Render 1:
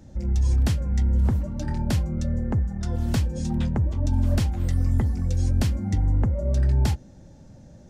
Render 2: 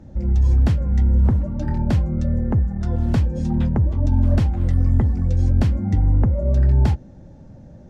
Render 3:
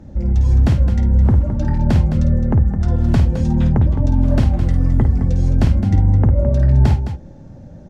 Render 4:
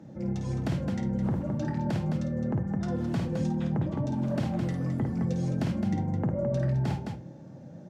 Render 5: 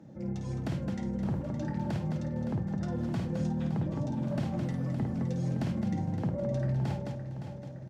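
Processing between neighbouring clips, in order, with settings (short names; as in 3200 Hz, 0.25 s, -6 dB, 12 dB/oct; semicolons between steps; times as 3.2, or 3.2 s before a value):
LPF 1400 Hz 6 dB/oct; gain +5 dB
loudspeakers at several distances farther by 18 m -8 dB, 73 m -10 dB; gain +3.5 dB
HPF 130 Hz 24 dB/oct; limiter -15 dBFS, peak gain reduction 8.5 dB; shoebox room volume 760 m³, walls furnished, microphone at 0.65 m; gain -5.5 dB
feedback echo 0.565 s, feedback 55%, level -10 dB; gain -4 dB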